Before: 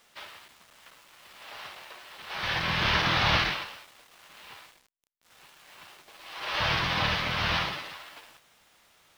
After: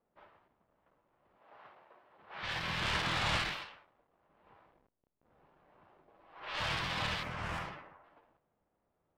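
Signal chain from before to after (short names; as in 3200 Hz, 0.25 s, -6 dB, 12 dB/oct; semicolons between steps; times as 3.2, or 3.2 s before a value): tracing distortion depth 0.033 ms; 1.37–2.41 HPF 220 Hz -> 100 Hz 6 dB/oct; 7.23–8.04 bell 3900 Hz -14.5 dB 1.2 oct; low-pass opened by the level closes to 560 Hz, open at -25.5 dBFS; 4.46–6.26 fast leveller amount 50%; gain -8.5 dB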